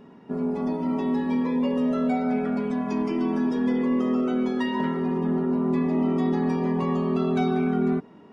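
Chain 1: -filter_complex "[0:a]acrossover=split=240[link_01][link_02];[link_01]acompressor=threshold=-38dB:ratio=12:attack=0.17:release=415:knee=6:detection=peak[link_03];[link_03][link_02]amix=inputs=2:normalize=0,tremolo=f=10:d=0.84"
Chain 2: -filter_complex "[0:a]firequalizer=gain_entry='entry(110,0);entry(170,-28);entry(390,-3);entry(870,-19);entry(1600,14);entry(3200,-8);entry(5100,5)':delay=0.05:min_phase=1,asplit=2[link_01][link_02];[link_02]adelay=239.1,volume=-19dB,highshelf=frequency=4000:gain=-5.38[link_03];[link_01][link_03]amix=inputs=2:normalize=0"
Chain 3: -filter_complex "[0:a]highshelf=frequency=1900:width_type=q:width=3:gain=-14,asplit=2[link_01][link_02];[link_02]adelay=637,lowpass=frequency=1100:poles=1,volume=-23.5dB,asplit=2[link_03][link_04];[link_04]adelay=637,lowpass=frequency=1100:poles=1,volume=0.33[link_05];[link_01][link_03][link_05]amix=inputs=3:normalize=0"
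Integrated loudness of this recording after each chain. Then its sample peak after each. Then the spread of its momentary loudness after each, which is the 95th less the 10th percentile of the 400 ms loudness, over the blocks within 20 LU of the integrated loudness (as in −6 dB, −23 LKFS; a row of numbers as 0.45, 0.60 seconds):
−31.5, −32.0, −24.0 LKFS; −14.5, −16.0, −12.0 dBFS; 3, 7, 3 LU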